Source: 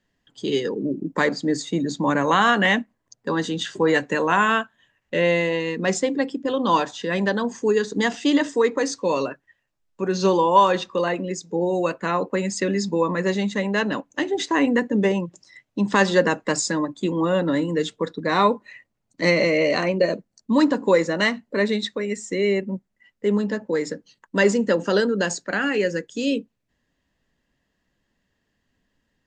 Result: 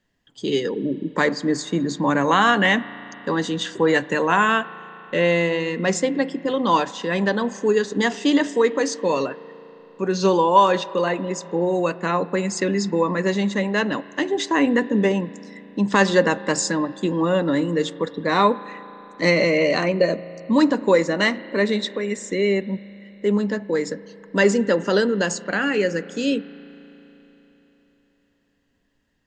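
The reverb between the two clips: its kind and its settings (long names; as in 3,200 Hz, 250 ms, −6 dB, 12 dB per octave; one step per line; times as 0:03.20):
spring reverb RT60 3.9 s, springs 35 ms, chirp 20 ms, DRR 17 dB
level +1 dB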